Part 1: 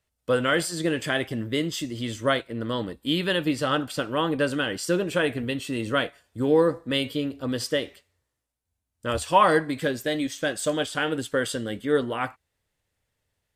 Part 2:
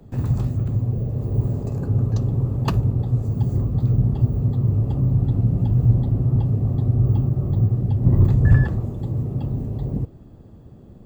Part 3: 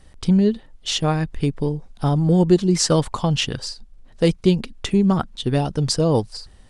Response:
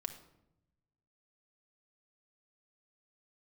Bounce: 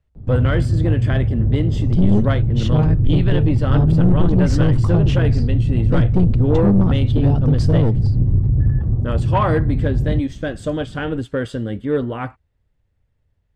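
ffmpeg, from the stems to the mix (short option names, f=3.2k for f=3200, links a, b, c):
-filter_complex "[0:a]volume=0dB[a];[1:a]acompressor=threshold=-20dB:ratio=6,adelay=150,volume=-4dB[b];[2:a]aeval=exprs='clip(val(0),-1,0.133)':c=same,adelay=1700,volume=-5dB,asplit=2[c][d];[d]volume=-11dB[e];[3:a]atrim=start_sample=2205[f];[e][f]afir=irnorm=-1:irlink=0[g];[a][b][c][g]amix=inputs=4:normalize=0,aemphasis=mode=reproduction:type=riaa,asoftclip=type=tanh:threshold=-7.5dB"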